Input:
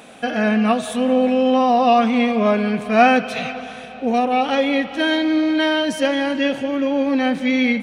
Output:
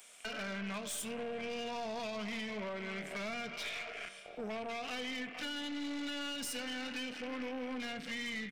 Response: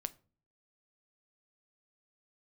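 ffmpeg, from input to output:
-filter_complex "[0:a]aderivative,asetrate=40517,aresample=44100,afwtdn=0.00631,highpass=120[a];[1:a]atrim=start_sample=2205[b];[a][b]afir=irnorm=-1:irlink=0,acrossover=split=270[c][d];[d]acompressor=threshold=-51dB:ratio=4[e];[c][e]amix=inputs=2:normalize=0,asplit=2[f][g];[g]adelay=1458,volume=-30dB,highshelf=f=4k:g=-32.8[h];[f][h]amix=inputs=2:normalize=0,acrossover=split=4600[i][j];[i]acompressor=threshold=-47dB:ratio=6[k];[k][j]amix=inputs=2:normalize=0,aeval=exprs='(tanh(316*val(0)+0.3)-tanh(0.3))/316':c=same,volume=14.5dB"

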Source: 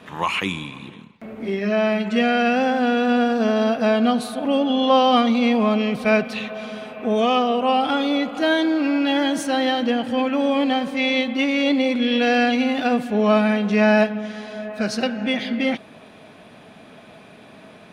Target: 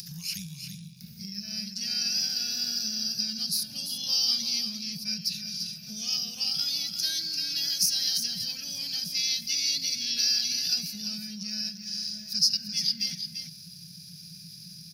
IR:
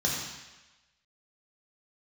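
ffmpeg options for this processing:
-filter_complex "[0:a]firequalizer=gain_entry='entry(100,0);entry(170,13);entry(250,-26);entry(430,-24);entry(1100,-29);entry(1600,-12);entry(3300,-23);entry(5000,9);entry(7600,-16);entry(12000,3)':delay=0.05:min_phase=1,atempo=1.2,acompressor=threshold=-33dB:ratio=6,equalizer=f=490:t=o:w=1.6:g=-9.5,acompressor=mode=upward:threshold=-46dB:ratio=2.5,aexciter=amount=8.8:drive=6.3:freq=2.8k,asplit=2[a][b];[b]aecho=0:1:343:0.398[c];[a][c]amix=inputs=2:normalize=0,volume=-5dB"

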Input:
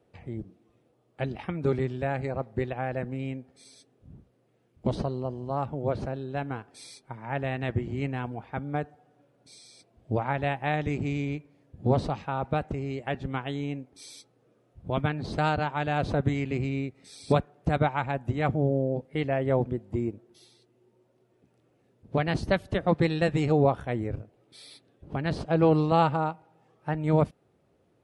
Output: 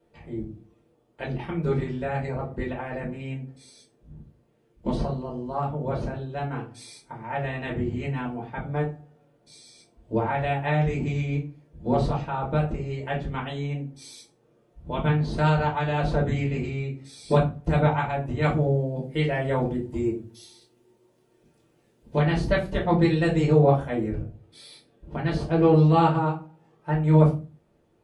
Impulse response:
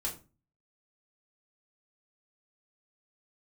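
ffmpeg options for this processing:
-filter_complex "[0:a]asettb=1/sr,asplit=3[a][b][c];[a]atrim=end=18.424[d];[b]atrim=start=18.42:end=22.19,asetpts=PTS-STARTPTS,afade=t=in:d=0.004:c=qsin,afade=t=out:st=3.766:d=0.004:c=qsin,highshelf=f=2.7k:g=9.5[e];[c]atrim=start=22.186[f];[d][e]acrossfade=d=0.004:c1=hsin:c2=qsin[g];[g][f]acrossfade=d=0.004:c1=qsin:c2=hsin[h];[1:a]atrim=start_sample=2205,afade=t=out:st=0.39:d=0.01,atrim=end_sample=17640[i];[h][i]afir=irnorm=-1:irlink=0"

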